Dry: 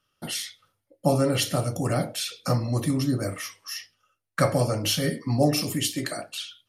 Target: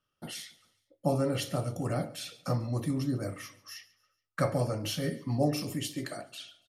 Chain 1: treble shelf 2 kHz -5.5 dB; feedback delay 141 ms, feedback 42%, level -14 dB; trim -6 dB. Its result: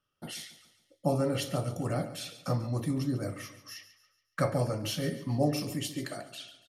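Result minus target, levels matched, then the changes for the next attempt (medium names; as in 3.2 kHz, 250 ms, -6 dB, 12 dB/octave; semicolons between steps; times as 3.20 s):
echo-to-direct +7 dB
change: feedback delay 141 ms, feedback 42%, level -21 dB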